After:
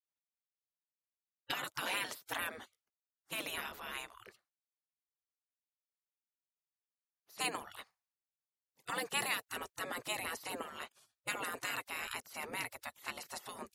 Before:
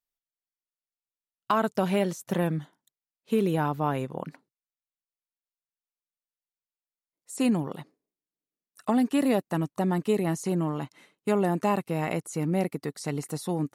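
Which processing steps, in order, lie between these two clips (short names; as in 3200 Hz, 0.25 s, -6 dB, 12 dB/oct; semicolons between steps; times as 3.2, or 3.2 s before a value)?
spectral gate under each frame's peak -20 dB weak; low shelf 83 Hz -6 dB; mismatched tape noise reduction decoder only; gain +3 dB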